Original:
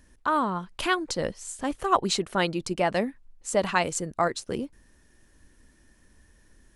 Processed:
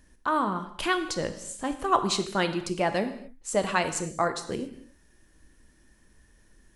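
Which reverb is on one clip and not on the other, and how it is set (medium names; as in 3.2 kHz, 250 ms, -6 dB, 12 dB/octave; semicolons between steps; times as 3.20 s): gated-style reverb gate 300 ms falling, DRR 8 dB; trim -1.5 dB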